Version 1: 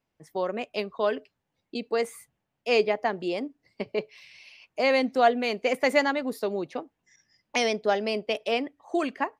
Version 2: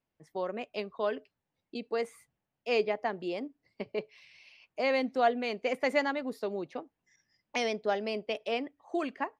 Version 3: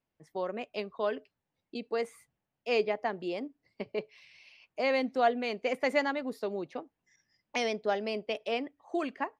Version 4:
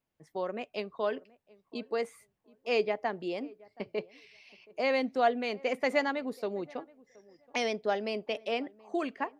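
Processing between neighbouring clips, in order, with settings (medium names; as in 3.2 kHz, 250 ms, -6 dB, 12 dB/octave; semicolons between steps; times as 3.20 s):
treble shelf 8.7 kHz -11.5 dB; trim -5.5 dB
no audible change
tape echo 725 ms, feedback 21%, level -22 dB, low-pass 1.1 kHz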